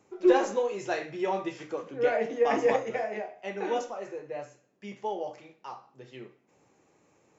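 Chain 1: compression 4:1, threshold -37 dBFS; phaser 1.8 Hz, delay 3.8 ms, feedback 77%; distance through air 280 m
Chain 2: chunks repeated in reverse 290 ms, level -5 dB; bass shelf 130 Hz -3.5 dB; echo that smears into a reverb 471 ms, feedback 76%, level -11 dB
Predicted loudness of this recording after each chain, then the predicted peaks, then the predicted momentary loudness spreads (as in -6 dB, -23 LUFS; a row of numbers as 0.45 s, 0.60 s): -39.0 LUFS, -29.0 LUFS; -20.0 dBFS, -9.5 dBFS; 12 LU, 19 LU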